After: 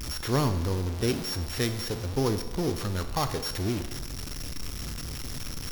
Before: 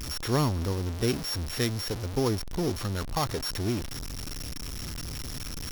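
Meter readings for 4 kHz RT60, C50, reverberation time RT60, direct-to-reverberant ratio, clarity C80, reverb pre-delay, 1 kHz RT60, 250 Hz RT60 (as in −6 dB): 1.1 s, 10.5 dB, 1.1 s, 8.5 dB, 12.5 dB, 14 ms, 1.1 s, 1.1 s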